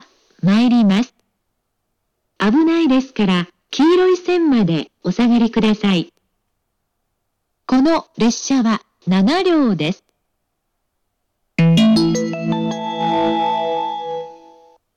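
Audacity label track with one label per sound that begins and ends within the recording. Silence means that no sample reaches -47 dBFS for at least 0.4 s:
2.400000	6.170000	sound
7.690000	10.090000	sound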